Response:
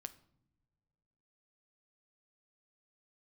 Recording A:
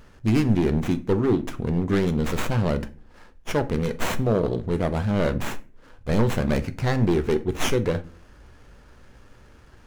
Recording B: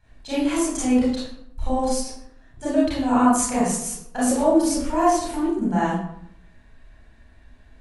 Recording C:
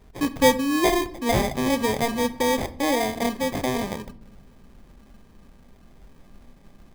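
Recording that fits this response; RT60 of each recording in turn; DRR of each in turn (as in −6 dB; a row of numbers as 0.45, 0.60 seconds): C; non-exponential decay, 0.70 s, non-exponential decay; 10.0, −10.0, 11.0 decibels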